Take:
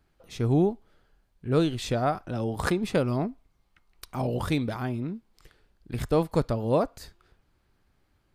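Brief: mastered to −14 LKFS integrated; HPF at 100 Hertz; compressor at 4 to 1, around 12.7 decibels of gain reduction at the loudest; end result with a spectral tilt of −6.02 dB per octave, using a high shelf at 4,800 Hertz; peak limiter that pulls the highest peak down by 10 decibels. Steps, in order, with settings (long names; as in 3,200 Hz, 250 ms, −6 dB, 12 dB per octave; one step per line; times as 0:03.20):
high-pass filter 100 Hz
high-shelf EQ 4,800 Hz −4.5 dB
downward compressor 4 to 1, threshold −34 dBFS
level +26.5 dB
brickwall limiter −3.5 dBFS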